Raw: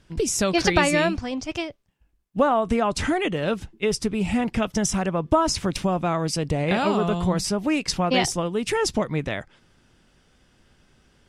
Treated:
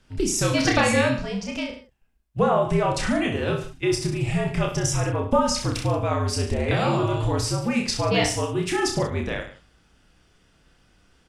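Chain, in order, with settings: frequency shift -64 Hz; reverse bouncing-ball echo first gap 30 ms, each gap 1.1×, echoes 5; gain -2 dB

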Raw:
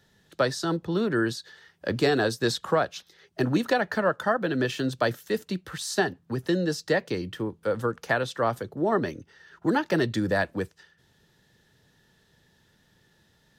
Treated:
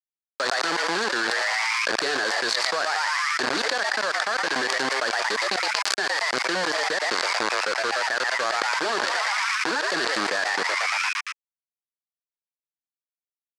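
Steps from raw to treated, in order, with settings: zero-crossing step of -38.5 dBFS; bit-crush 4-bit; speaker cabinet 420–8100 Hz, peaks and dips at 1100 Hz +4 dB, 1600 Hz +9 dB, 4500 Hz +9 dB; frequency-shifting echo 0.115 s, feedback 61%, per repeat +140 Hz, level -16 dB; fast leveller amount 100%; gain -9.5 dB

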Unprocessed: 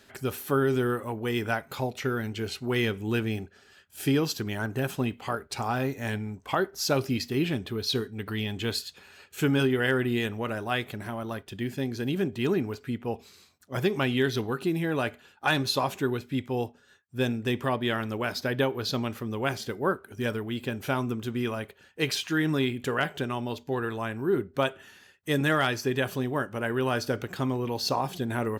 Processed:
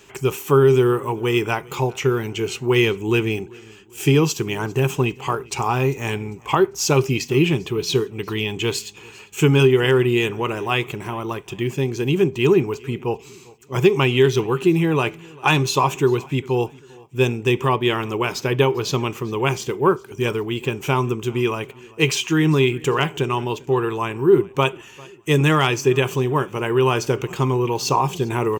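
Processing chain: ripple EQ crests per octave 0.72, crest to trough 11 dB; feedback echo 0.398 s, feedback 42%, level -24 dB; gain +7 dB

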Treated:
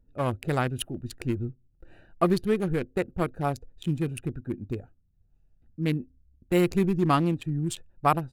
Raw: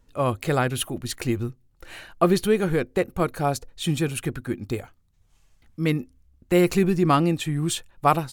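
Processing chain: Wiener smoothing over 41 samples; bell 510 Hz -2.5 dB 0.77 oct; gain -2.5 dB

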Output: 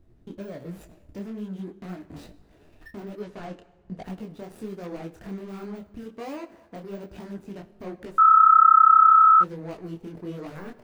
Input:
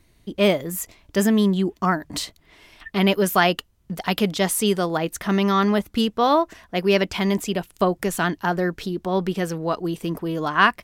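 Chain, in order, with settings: median filter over 41 samples; 3.22–4.01 LPF 7200 Hz 12 dB/oct; de-esser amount 70%; 6.03–6.75 HPF 170 Hz 6 dB/oct; compressor 3:1, threshold -37 dBFS, peak gain reduction 16 dB; limiter -31.5 dBFS, peak gain reduction 8.5 dB; plate-style reverb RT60 1.4 s, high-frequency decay 0.75×, DRR 13.5 dB; 8.18–9.41 bleep 1300 Hz -13.5 dBFS; detuned doubles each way 43 cents; gain +5.5 dB

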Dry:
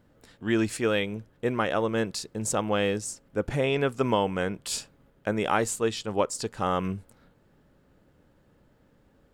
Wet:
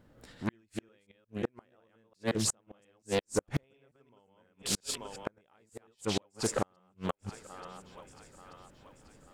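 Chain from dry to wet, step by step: reverse delay 0.178 s, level -1 dB; thinning echo 0.884 s, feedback 50%, high-pass 420 Hz, level -20.5 dB; flipped gate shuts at -17 dBFS, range -42 dB; Doppler distortion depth 0.66 ms

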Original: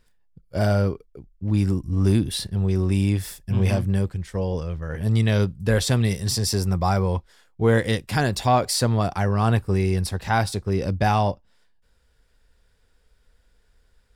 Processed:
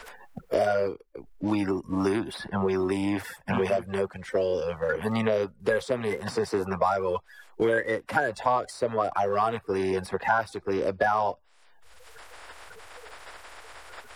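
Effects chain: bin magnitudes rounded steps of 30 dB; three-band isolator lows -21 dB, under 450 Hz, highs -14 dB, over 2100 Hz; in parallel at -10 dB: backlash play -38 dBFS; on the sum: three-band squash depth 100%

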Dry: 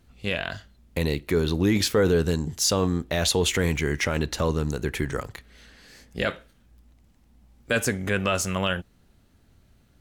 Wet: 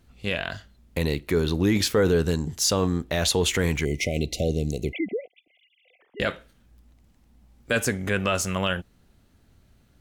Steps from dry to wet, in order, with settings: 4.93–6.2 sine-wave speech; 3.85–6.01 spectral delete 770–2000 Hz

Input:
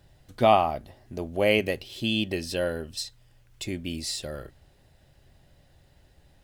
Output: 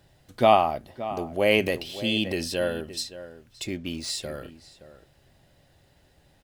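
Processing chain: low shelf 81 Hz -10 dB; outdoor echo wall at 98 m, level -14 dB; 1.27–2.58 transient shaper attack -1 dB, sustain +5 dB; 3.67–4.1 decimation joined by straight lines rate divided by 3×; gain +1.5 dB

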